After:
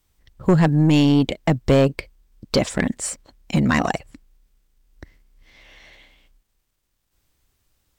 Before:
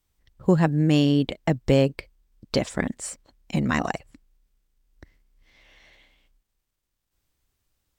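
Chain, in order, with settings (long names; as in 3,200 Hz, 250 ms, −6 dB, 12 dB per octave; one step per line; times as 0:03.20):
soft clipping −16 dBFS, distortion −12 dB
level +7 dB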